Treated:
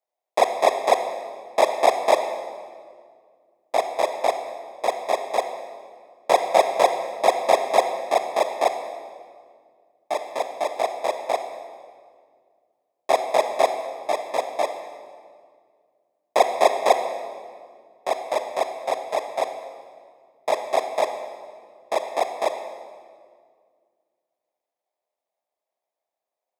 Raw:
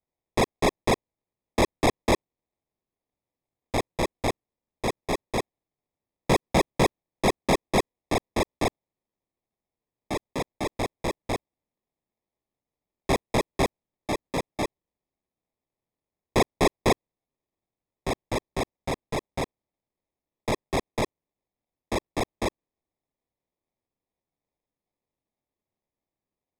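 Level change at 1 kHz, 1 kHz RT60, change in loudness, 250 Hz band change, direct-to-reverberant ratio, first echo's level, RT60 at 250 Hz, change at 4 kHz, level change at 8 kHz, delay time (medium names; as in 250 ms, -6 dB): +8.5 dB, 1.8 s, +4.5 dB, -11.0 dB, 7.0 dB, no echo, 2.4 s, +1.0 dB, +0.5 dB, no echo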